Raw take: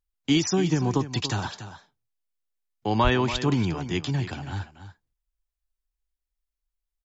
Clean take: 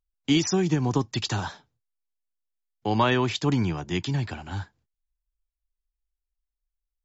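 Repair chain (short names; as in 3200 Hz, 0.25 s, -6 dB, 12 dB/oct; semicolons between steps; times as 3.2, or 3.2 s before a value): 3.03–3.15 HPF 140 Hz 24 dB/oct; inverse comb 0.286 s -12 dB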